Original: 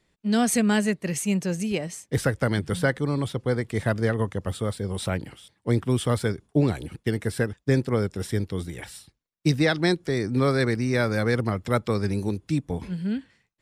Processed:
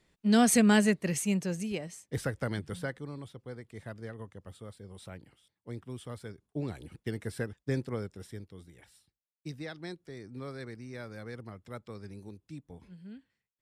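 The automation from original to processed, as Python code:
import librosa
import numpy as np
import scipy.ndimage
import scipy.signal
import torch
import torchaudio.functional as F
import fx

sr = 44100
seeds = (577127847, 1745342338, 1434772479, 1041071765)

y = fx.gain(x, sr, db=fx.line((0.84, -1.0), (1.92, -9.5), (2.52, -9.5), (3.35, -18.5), (6.25, -18.5), (6.96, -10.0), (7.84, -10.0), (8.52, -19.5)))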